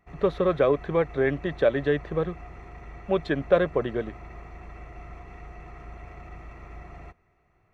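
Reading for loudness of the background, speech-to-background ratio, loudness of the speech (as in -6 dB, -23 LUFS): -44.5 LUFS, 19.0 dB, -25.5 LUFS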